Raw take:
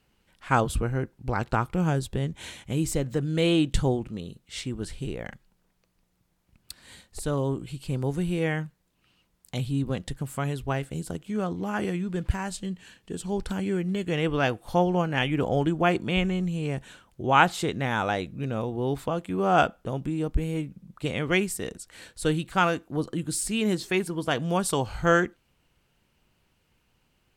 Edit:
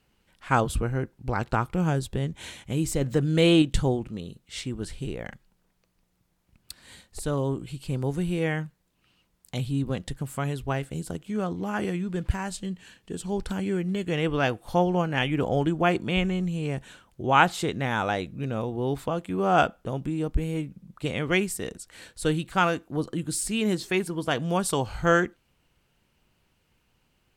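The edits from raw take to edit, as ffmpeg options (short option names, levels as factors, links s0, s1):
-filter_complex "[0:a]asplit=3[s0][s1][s2];[s0]atrim=end=3.012[s3];[s1]atrim=start=3.008:end=3.622,asetpts=PTS-STARTPTS,volume=1.5[s4];[s2]atrim=start=3.618[s5];[s3][s4]acrossfade=d=0.004:c1=hsin:c2=hsin[s6];[s6][s5]acrossfade=d=0.004:c1=hsin:c2=hsin"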